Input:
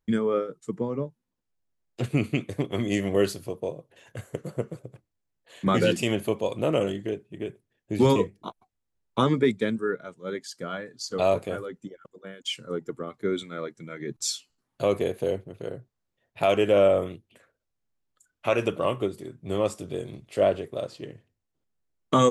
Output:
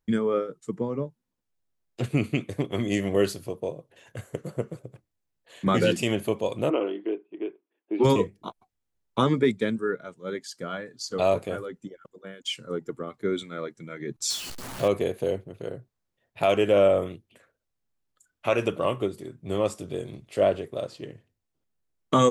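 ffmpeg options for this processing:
-filter_complex "[0:a]asplit=3[s0][s1][s2];[s0]afade=t=out:st=6.69:d=0.02[s3];[s1]highpass=f=310:w=0.5412,highpass=f=310:w=1.3066,equalizer=f=320:t=q:w=4:g=7,equalizer=f=560:t=q:w=4:g=-5,equalizer=f=1000:t=q:w=4:g=4,equalizer=f=1800:t=q:w=4:g=-8,lowpass=f=2800:w=0.5412,lowpass=f=2800:w=1.3066,afade=t=in:st=6.69:d=0.02,afade=t=out:st=8.03:d=0.02[s4];[s2]afade=t=in:st=8.03:d=0.02[s5];[s3][s4][s5]amix=inputs=3:normalize=0,asettb=1/sr,asplit=3[s6][s7][s8];[s6]atrim=end=14.304[s9];[s7]atrim=start=14.3:end=14.88,asetpts=PTS-STARTPTS,afade=t=in:d=0.004:c=qsin,afade=t=out:st=0.576:d=0.004:c=qsin,aeval=exprs='val(0)+0.5*0.0282*sgn(val(0))':c=same[s10];[s8]atrim=start=14.876[s11];[s9][s10]acrossfade=d=0.004:c1=hsin:c2=qsin[s12];[s12][s11]acrossfade=d=0.004:c1=qsin:c2=hsin"

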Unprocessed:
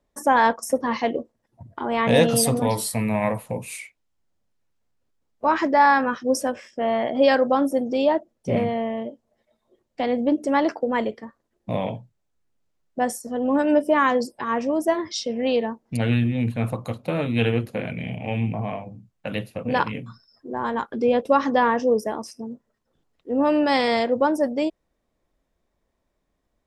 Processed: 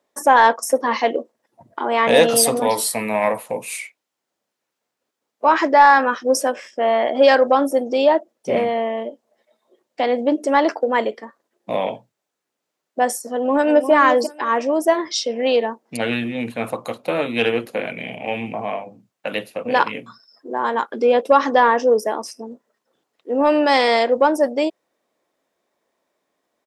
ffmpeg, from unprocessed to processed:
-filter_complex "[0:a]asplit=2[s0][s1];[s1]afade=t=in:st=13.31:d=0.01,afade=t=out:st=13.91:d=0.01,aecho=0:1:350|700:0.375837|0.0563756[s2];[s0][s2]amix=inputs=2:normalize=0,highpass=360,acontrast=31,volume=1.12"

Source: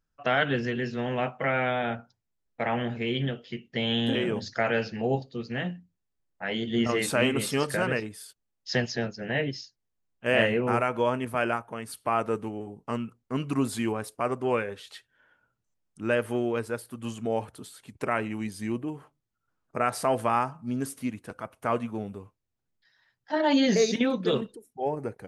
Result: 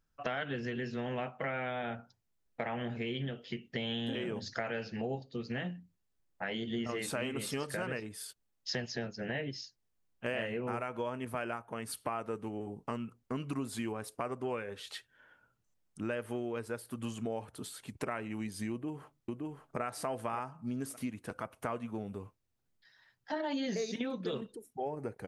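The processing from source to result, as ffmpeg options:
-filter_complex "[0:a]asplit=2[s0][s1];[s1]afade=t=in:st=18.71:d=0.01,afade=t=out:st=19.82:d=0.01,aecho=0:1:570|1140:0.530884|0.0530884[s2];[s0][s2]amix=inputs=2:normalize=0,acompressor=threshold=0.0141:ratio=4,volume=1.19"

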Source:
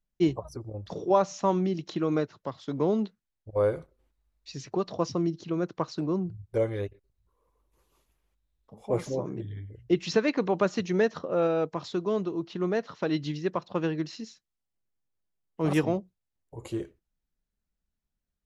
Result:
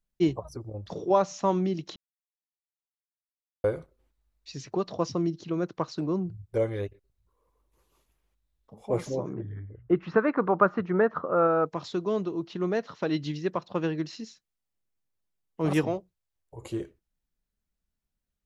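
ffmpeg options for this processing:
-filter_complex "[0:a]asettb=1/sr,asplit=3[s0][s1][s2];[s0]atrim=end=9.334[s3];[s1]atrim=start=9.33:end=11.66,asetpts=PTS-STARTPTS,afade=t=in:d=0.004:c=qsin,afade=t=out:st=2.326:d=0.004:c=qsin,lowpass=f=1300:t=q:w=3.4[s4];[s2]atrim=start=11.656[s5];[s3][s4]acrossfade=d=0.004:c1=hsin:c2=qsin[s6];[s6][s5]acrossfade=d=0.004:c1=qsin:c2=hsin,asettb=1/sr,asplit=3[s7][s8][s9];[s7]atrim=end=15.874[s10];[s8]atrim=start=15.87:end=16.62,asetpts=PTS-STARTPTS,afade=t=in:d=0.004:c=qsin,afade=t=out:st=0.746:d=0.004:c=qsin,equalizer=f=220:w=2.1:g=-12.5[s11];[s9]atrim=start=16.616[s12];[s10][s11]acrossfade=d=0.004:c1=hsin:c2=qsin[s13];[s13][s12]acrossfade=d=0.004:c1=qsin:c2=hsin,asplit=3[s14][s15][s16];[s14]atrim=end=1.96,asetpts=PTS-STARTPTS,afade=t=out:st=1.956:d=0.004:c=hsin[s17];[s15]atrim=start=1.96:end=3.64,asetpts=PTS-STARTPTS,volume=0[s18];[s16]atrim=start=3.64,asetpts=PTS-STARTPTS,afade=t=in:d=0.004:c=hsin[s19];[s17][s18][s19]concat=n=3:v=0:a=1"

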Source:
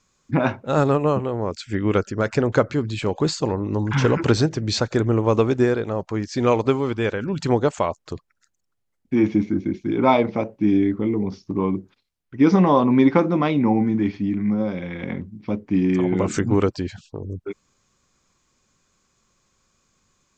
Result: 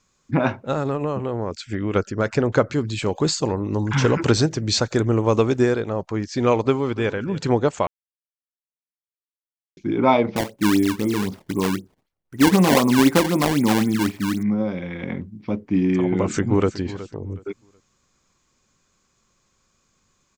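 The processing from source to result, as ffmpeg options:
-filter_complex "[0:a]asettb=1/sr,asplit=3[s0][s1][s2];[s0]atrim=end=0.724[s3];[s1]atrim=start=0.72:end=1.96,asetpts=PTS-STARTPTS,afade=t=in:d=0.004:c=qsin,afade=t=out:st=1.236:d=0.004:c=qsin,acompressor=threshold=0.1:ratio=4:attack=3.2:release=140:knee=1:detection=peak[s4];[s2]atrim=start=1.956[s5];[s3][s4]acrossfade=d=0.004:c1=hsin:c2=qsin[s6];[s6][s5]acrossfade=d=0.004:c1=qsin:c2=hsin,asettb=1/sr,asplit=3[s7][s8][s9];[s7]atrim=end=2.714[s10];[s8]atrim=start=2.71:end=5.83,asetpts=PTS-STARTPTS,afade=t=in:d=0.004:c=qsin,afade=t=out:st=3.116:d=0.004:c=qsin,highshelf=f=6500:g=10.5[s11];[s9]atrim=start=5.826[s12];[s10][s11]acrossfade=d=0.004:c1=hsin:c2=qsin[s13];[s13][s12]acrossfade=d=0.004:c1=qsin:c2=hsin,asplit=2[s14][s15];[s15]afade=t=in:st=6.66:d=0.01,afade=t=out:st=7.23:d=0.01,aecho=0:1:290|580:0.133352|0.0200028[s16];[s14][s16]amix=inputs=2:normalize=0,asettb=1/sr,asplit=3[s17][s18][s19];[s17]atrim=end=10.364[s20];[s18]atrim=start=10.36:end=14.43,asetpts=PTS-STARTPTS,afade=t=in:d=0.004:c=qsin,afade=t=out:st=4.066:d=0.004:c=qsin,acrusher=samples=20:mix=1:aa=0.000001:lfo=1:lforange=32:lforate=3.9[s21];[s19]atrim=start=14.426[s22];[s20][s21]acrossfade=d=0.004:c1=hsin:c2=qsin[s23];[s23][s22]acrossfade=d=0.004:c1=qsin:c2=hsin,asplit=2[s24][s25];[s25]afade=t=in:st=16.05:d=0.01,afade=t=out:st=16.76:d=0.01,aecho=0:1:370|740|1110:0.177828|0.044457|0.0111142[s26];[s24][s26]amix=inputs=2:normalize=0,asplit=3[s27][s28][s29];[s27]atrim=end=7.87,asetpts=PTS-STARTPTS,afade=t=out:st=7.866:d=0.004:c=hsin[s30];[s28]atrim=start=7.87:end=9.77,asetpts=PTS-STARTPTS,volume=0[s31];[s29]atrim=start=9.77,asetpts=PTS-STARTPTS,afade=t=in:d=0.004:c=hsin[s32];[s30][s31][s32]concat=n=3:v=0:a=1"

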